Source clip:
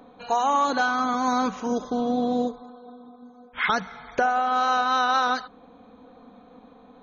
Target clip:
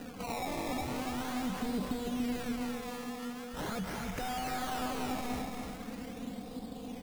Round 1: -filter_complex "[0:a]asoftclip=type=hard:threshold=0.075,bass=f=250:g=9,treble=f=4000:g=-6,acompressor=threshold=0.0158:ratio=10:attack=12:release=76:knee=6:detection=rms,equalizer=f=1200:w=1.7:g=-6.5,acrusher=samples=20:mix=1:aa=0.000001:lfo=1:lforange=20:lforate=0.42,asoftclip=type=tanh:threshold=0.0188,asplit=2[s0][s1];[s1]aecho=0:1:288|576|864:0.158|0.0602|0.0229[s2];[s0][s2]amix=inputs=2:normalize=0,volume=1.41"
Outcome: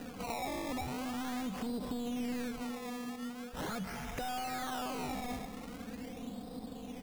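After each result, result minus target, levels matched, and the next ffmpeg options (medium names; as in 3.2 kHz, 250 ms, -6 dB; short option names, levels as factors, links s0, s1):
saturation: distortion +14 dB; echo-to-direct -11.5 dB; hard clipper: distortion -6 dB
-filter_complex "[0:a]asoftclip=type=hard:threshold=0.075,bass=f=250:g=9,treble=f=4000:g=-6,acompressor=threshold=0.0158:ratio=10:attack=12:release=76:knee=6:detection=rms,equalizer=f=1200:w=1.7:g=-6.5,acrusher=samples=20:mix=1:aa=0.000001:lfo=1:lforange=20:lforate=0.42,asoftclip=type=tanh:threshold=0.0447,asplit=2[s0][s1];[s1]aecho=0:1:288|576|864:0.158|0.0602|0.0229[s2];[s0][s2]amix=inputs=2:normalize=0,volume=1.41"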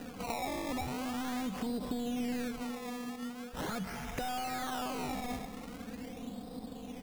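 echo-to-direct -11.5 dB; hard clipper: distortion -6 dB
-filter_complex "[0:a]asoftclip=type=hard:threshold=0.075,bass=f=250:g=9,treble=f=4000:g=-6,acompressor=threshold=0.0158:ratio=10:attack=12:release=76:knee=6:detection=rms,equalizer=f=1200:w=1.7:g=-6.5,acrusher=samples=20:mix=1:aa=0.000001:lfo=1:lforange=20:lforate=0.42,asoftclip=type=tanh:threshold=0.0447,asplit=2[s0][s1];[s1]aecho=0:1:288|576|864|1152|1440:0.596|0.226|0.086|0.0327|0.0124[s2];[s0][s2]amix=inputs=2:normalize=0,volume=1.41"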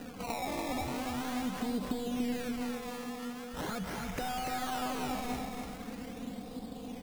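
hard clipper: distortion -6 dB
-filter_complex "[0:a]asoftclip=type=hard:threshold=0.0237,bass=f=250:g=9,treble=f=4000:g=-6,acompressor=threshold=0.0158:ratio=10:attack=12:release=76:knee=6:detection=rms,equalizer=f=1200:w=1.7:g=-6.5,acrusher=samples=20:mix=1:aa=0.000001:lfo=1:lforange=20:lforate=0.42,asoftclip=type=tanh:threshold=0.0447,asplit=2[s0][s1];[s1]aecho=0:1:288|576|864|1152|1440:0.596|0.226|0.086|0.0327|0.0124[s2];[s0][s2]amix=inputs=2:normalize=0,volume=1.41"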